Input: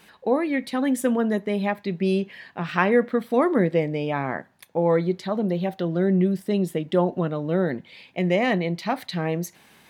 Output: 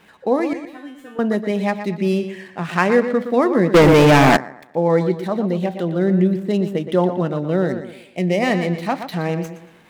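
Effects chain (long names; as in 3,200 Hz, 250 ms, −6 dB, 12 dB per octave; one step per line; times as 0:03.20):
running median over 9 samples
0:00.53–0:01.19: tuned comb filter 150 Hz, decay 0.39 s, harmonics all, mix 100%
0:07.68–0:08.42: parametric band 1,200 Hz −7 dB 1.3 octaves
tape delay 120 ms, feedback 39%, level −9 dB, low-pass 5,700 Hz
dynamic equaliser 5,100 Hz, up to +5 dB, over −51 dBFS, Q 1.8
0:03.74–0:04.37: leveller curve on the samples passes 5
level +3.5 dB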